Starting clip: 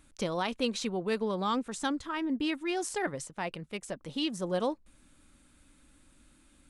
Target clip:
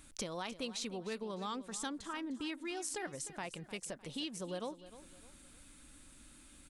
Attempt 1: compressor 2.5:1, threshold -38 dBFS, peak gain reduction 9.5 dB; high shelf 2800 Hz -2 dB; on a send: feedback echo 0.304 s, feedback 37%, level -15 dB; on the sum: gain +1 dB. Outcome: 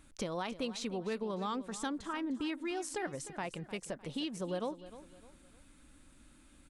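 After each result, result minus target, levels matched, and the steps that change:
compressor: peak gain reduction -5 dB; 4000 Hz band -3.5 dB
change: compressor 2.5:1, threshold -46 dBFS, peak gain reduction 14 dB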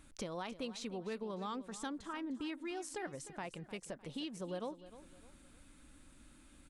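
4000 Hz band -3.0 dB
change: high shelf 2800 Hz +6.5 dB

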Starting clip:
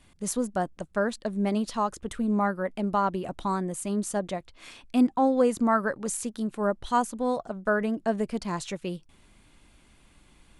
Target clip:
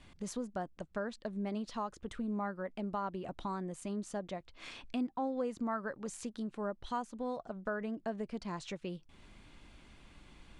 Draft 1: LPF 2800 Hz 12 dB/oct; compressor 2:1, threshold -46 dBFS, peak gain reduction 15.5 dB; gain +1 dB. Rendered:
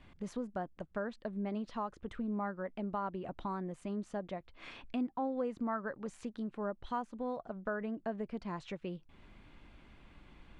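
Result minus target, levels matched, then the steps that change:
8000 Hz band -12.0 dB
change: LPF 5800 Hz 12 dB/oct

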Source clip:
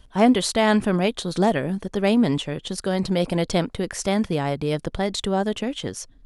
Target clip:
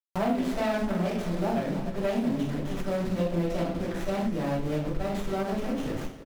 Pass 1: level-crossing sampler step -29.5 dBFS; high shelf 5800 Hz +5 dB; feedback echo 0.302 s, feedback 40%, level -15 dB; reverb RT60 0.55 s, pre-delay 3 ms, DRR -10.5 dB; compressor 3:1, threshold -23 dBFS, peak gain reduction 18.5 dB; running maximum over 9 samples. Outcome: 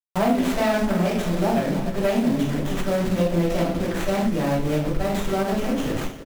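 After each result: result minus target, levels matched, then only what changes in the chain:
compressor: peak gain reduction -6.5 dB; 8000 Hz band +4.0 dB
change: compressor 3:1, threshold -32.5 dBFS, peak gain reduction 25 dB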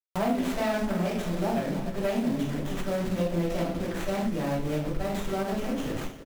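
8000 Hz band +4.0 dB
change: high shelf 5800 Hz -6 dB

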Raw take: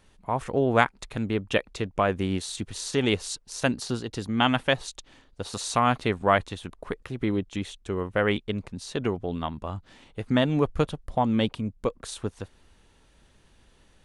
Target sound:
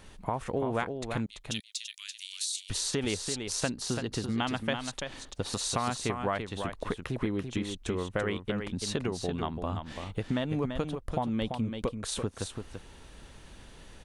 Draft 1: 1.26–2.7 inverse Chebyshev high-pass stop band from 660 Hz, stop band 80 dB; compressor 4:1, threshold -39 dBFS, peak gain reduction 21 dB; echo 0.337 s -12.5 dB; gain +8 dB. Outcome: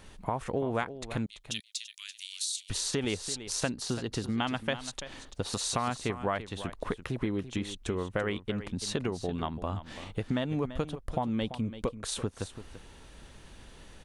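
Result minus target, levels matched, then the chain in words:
echo-to-direct -6 dB
1.26–2.7 inverse Chebyshev high-pass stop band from 660 Hz, stop band 80 dB; compressor 4:1, threshold -39 dBFS, peak gain reduction 21 dB; echo 0.337 s -6.5 dB; gain +8 dB

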